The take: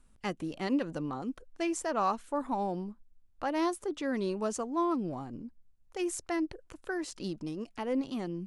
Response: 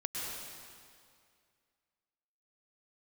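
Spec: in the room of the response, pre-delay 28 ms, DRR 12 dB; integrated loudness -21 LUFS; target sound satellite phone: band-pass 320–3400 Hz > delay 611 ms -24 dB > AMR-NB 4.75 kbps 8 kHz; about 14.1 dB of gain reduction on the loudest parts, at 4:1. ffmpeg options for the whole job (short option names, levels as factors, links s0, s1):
-filter_complex "[0:a]acompressor=threshold=0.00794:ratio=4,asplit=2[s0][s1];[1:a]atrim=start_sample=2205,adelay=28[s2];[s1][s2]afir=irnorm=-1:irlink=0,volume=0.168[s3];[s0][s3]amix=inputs=2:normalize=0,highpass=320,lowpass=3400,aecho=1:1:611:0.0631,volume=22.4" -ar 8000 -c:a libopencore_amrnb -b:a 4750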